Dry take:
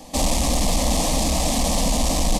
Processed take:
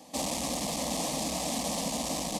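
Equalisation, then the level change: HPF 150 Hz 12 dB/oct; -9.0 dB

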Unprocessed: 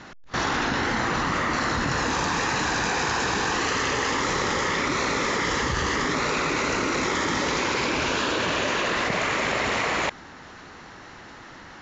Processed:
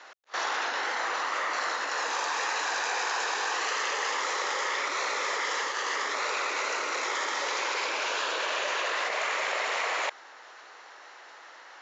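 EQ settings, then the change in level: HPF 490 Hz 24 dB/oct; -4.0 dB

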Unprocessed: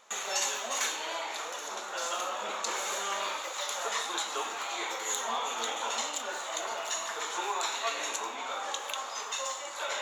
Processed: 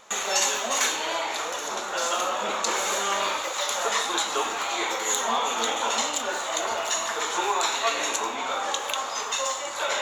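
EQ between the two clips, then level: low shelf 200 Hz +12 dB; +7.0 dB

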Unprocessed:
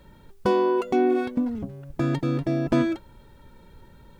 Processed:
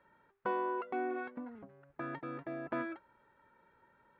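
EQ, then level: LPF 1700 Hz 24 dB/oct; differentiator; +9.0 dB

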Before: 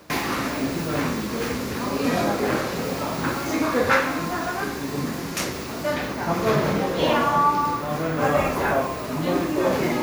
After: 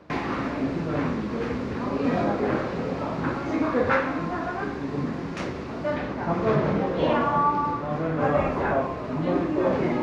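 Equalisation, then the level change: tape spacing loss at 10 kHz 29 dB; 0.0 dB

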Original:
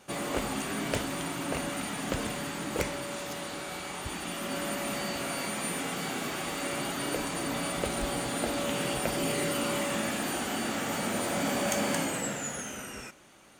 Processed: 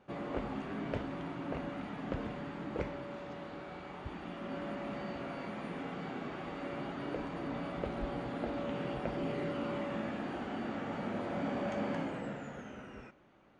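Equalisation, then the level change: tape spacing loss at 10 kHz 39 dB; -3.5 dB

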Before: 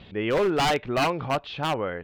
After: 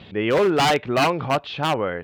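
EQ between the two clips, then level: HPF 77 Hz; +4.5 dB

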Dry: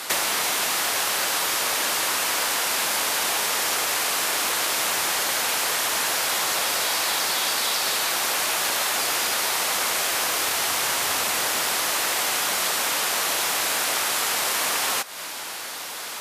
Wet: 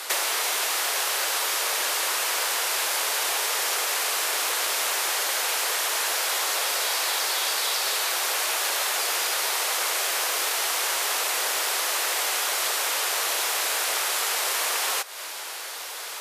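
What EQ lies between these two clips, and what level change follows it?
Chebyshev high-pass 400 Hz, order 3; -1.5 dB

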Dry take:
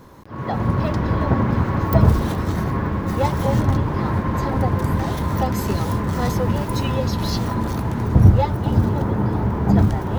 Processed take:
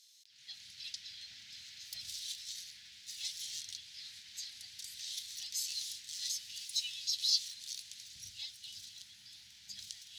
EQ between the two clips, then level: inverse Chebyshev high-pass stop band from 1200 Hz, stop band 60 dB; air absorption 70 m; +6.0 dB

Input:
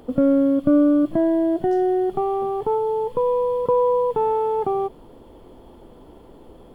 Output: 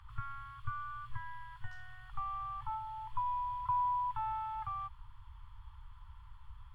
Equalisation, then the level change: inverse Chebyshev band-stop 190–490 Hz, stop band 50 dB; inverse Chebyshev band-stop 320–690 Hz, stop band 40 dB; LPF 1100 Hz 6 dB/oct; 0.0 dB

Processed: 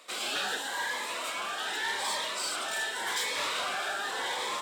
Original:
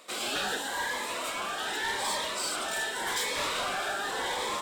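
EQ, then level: HPF 55 Hz; LPF 3200 Hz 6 dB/oct; tilt +2.5 dB/oct; -1.0 dB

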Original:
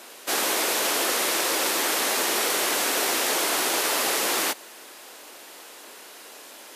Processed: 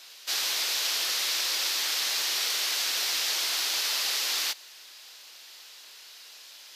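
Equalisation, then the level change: HPF 100 Hz; pre-emphasis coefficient 0.97; resonant high shelf 6700 Hz -13 dB, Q 1.5; +4.0 dB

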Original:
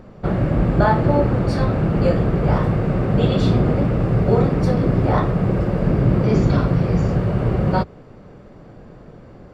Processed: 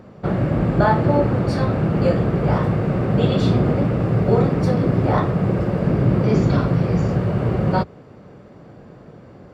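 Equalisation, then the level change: HPF 76 Hz; 0.0 dB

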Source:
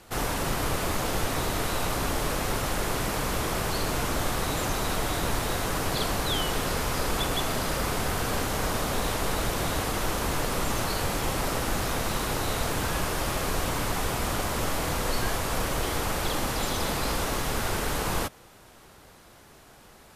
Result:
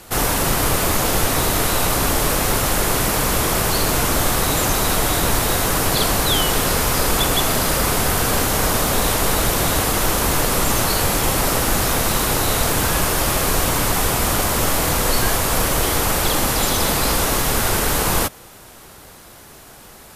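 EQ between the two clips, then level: high shelf 8100 Hz +9.5 dB; +8.5 dB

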